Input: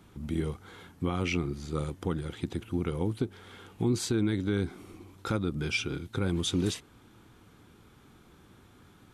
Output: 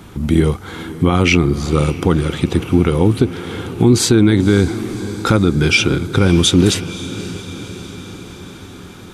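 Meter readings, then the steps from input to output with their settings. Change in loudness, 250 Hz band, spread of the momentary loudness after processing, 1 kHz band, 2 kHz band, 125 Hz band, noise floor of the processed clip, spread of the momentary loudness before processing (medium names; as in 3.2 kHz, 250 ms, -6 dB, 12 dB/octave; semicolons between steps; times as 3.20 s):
+17.0 dB, +17.0 dB, 18 LU, +17.0 dB, +17.5 dB, +17.5 dB, -36 dBFS, 12 LU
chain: on a send: echo that smears into a reverb 550 ms, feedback 63%, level -15.5 dB; on the sum: loudness maximiser +19 dB; trim -1 dB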